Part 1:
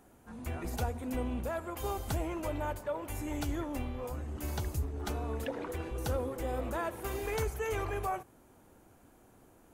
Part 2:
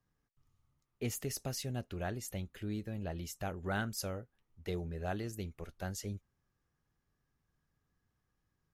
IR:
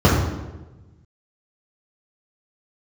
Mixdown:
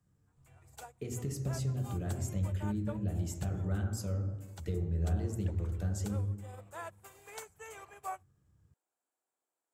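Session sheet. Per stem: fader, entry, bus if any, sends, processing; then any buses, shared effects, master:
-2.5 dB, 0.00 s, no send, HPF 580 Hz 12 dB/oct; upward expander 2.5:1, over -49 dBFS
-3.0 dB, 0.00 s, send -23 dB, compressor 6:1, threshold -42 dBFS, peak gain reduction 11 dB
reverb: on, RT60 1.1 s, pre-delay 3 ms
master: bell 7700 Hz +12 dB 0.31 oct

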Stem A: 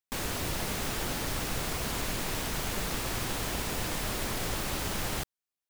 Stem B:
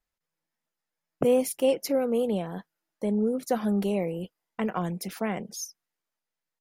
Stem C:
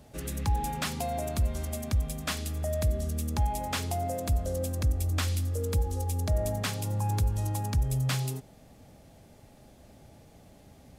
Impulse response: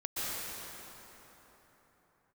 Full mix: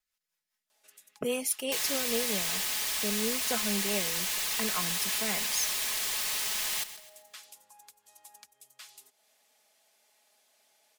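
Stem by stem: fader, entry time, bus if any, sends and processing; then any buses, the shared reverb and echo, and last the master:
-4.0 dB, 1.60 s, no send, echo send -13.5 dB, low shelf 350 Hz -10.5 dB; notch 1400 Hz, Q 6.7
-2.0 dB, 0.00 s, no send, no echo send, rotary speaker horn 5 Hz
-12.0 dB, 0.70 s, no send, no echo send, compressor 3:1, threshold -41 dBFS, peak gain reduction 14 dB; HPF 530 Hz 12 dB/oct; auto duck -10 dB, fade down 1.80 s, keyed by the second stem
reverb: off
echo: feedback echo 0.13 s, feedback 41%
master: tilt shelf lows -9.5 dB; comb 4.7 ms, depth 43%

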